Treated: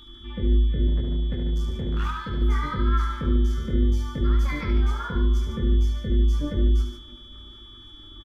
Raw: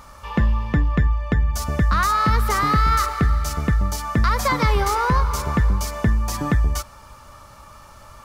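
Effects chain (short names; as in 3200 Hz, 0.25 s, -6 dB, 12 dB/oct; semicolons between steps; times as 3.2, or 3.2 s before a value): spectral contrast raised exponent 1.7; band shelf 690 Hz -15.5 dB; limiter -15.5 dBFS, peak gain reduction 6 dB; chorus voices 6, 0.25 Hz, delay 22 ms, depth 2.4 ms; 0.87–2.42 hard clip -22.5 dBFS, distortion -13 dB; whine 3400 Hz -44 dBFS; AM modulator 300 Hz, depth 55%; 3.05–4.09 doubler 49 ms -6 dB; loudspeakers at several distances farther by 25 m -6 dB, 50 m -9 dB; reverb, pre-delay 3 ms, DRR 10 dB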